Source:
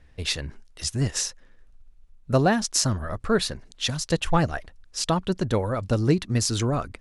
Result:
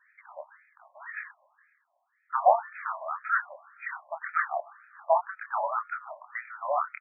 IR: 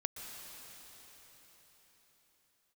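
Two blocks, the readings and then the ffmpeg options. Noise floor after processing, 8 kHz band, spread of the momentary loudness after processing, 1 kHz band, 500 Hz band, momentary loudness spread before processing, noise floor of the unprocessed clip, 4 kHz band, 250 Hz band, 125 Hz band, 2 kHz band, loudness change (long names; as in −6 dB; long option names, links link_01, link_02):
−74 dBFS, below −40 dB, 21 LU, +3.0 dB, −5.0 dB, 9 LU, −54 dBFS, below −40 dB, below −40 dB, below −40 dB, 0.0 dB, −5.0 dB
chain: -filter_complex "[0:a]asplit=2[link_01][link_02];[link_02]adelay=26,volume=-5.5dB[link_03];[link_01][link_03]amix=inputs=2:normalize=0,bandreject=frequency=353.8:width_type=h:width=4,bandreject=frequency=707.6:width_type=h:width=4,bandreject=frequency=1061.4:width_type=h:width=4,bandreject=frequency=1415.2:width_type=h:width=4,bandreject=frequency=1769:width_type=h:width=4,asplit=2[link_04][link_05];[1:a]atrim=start_sample=2205[link_06];[link_05][link_06]afir=irnorm=-1:irlink=0,volume=-19.5dB[link_07];[link_04][link_07]amix=inputs=2:normalize=0,afftfilt=real='re*between(b*sr/1024,780*pow(1800/780,0.5+0.5*sin(2*PI*1.9*pts/sr))/1.41,780*pow(1800/780,0.5+0.5*sin(2*PI*1.9*pts/sr))*1.41)':imag='im*between(b*sr/1024,780*pow(1800/780,0.5+0.5*sin(2*PI*1.9*pts/sr))/1.41,780*pow(1800/780,0.5+0.5*sin(2*PI*1.9*pts/sr))*1.41)':win_size=1024:overlap=0.75,volume=3.5dB"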